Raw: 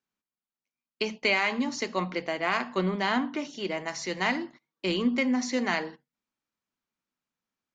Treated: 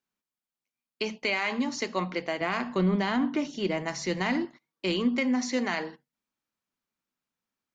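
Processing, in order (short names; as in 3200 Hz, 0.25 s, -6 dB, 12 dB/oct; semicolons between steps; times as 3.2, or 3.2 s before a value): 2.41–4.45 low shelf 270 Hz +10.5 dB; limiter -16.5 dBFS, peak gain reduction 6 dB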